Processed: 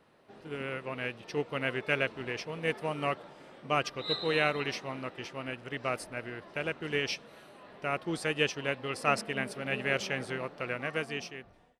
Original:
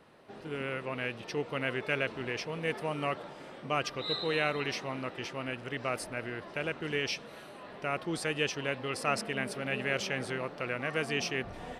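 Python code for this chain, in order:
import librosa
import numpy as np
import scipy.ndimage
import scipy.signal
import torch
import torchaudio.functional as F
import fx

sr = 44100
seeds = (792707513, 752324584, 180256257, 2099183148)

y = fx.fade_out_tail(x, sr, length_s=1.02)
y = fx.upward_expand(y, sr, threshold_db=-43.0, expansion=1.5)
y = y * 10.0 ** (3.5 / 20.0)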